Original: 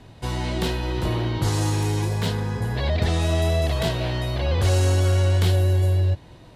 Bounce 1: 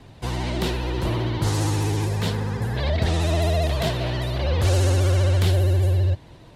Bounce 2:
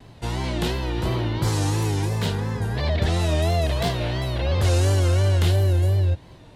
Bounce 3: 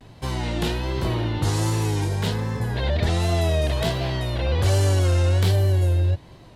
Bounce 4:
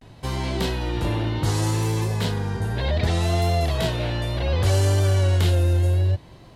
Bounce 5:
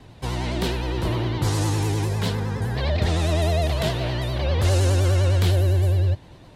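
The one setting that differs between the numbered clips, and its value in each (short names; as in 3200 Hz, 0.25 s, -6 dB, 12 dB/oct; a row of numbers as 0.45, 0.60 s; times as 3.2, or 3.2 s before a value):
vibrato, rate: 15, 2.9, 1.3, 0.66, 9.8 Hz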